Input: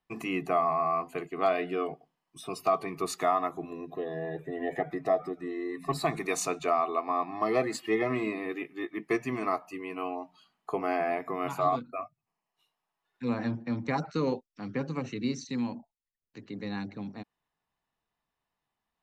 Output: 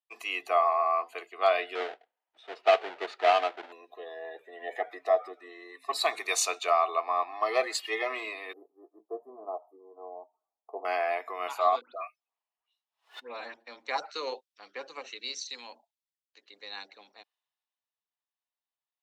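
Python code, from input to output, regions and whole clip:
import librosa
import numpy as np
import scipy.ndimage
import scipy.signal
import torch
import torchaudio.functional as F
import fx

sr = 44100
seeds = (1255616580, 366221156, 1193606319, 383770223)

y = fx.chain(x, sr, fx.halfwave_hold(),
    fx.lowpass(hz=1700.0, slope=12),
    fx.peak_eq(hz=1100.0, db=-13.0, octaves=0.21), at=(1.75, 3.72))
y = fx.chain(y, sr, fx.cheby2_bandstop(low_hz=2200.0, high_hz=4900.0, order=4, stop_db=70),
    fx.high_shelf(hz=3200.0, db=-12.0),
    fx.doubler(ms=13.0, db=-9.5), at=(8.53, 10.85))
y = fx.chain(y, sr, fx.high_shelf(hz=9300.0, db=-11.5),
    fx.dispersion(late='highs', ms=145.0, hz=2500.0),
    fx.pre_swell(db_per_s=150.0), at=(11.81, 13.54))
y = scipy.signal.sosfilt(scipy.signal.butter(4, 500.0, 'highpass', fs=sr, output='sos'), y)
y = fx.peak_eq(y, sr, hz=3600.0, db=8.0, octaves=1.1)
y = fx.band_widen(y, sr, depth_pct=40)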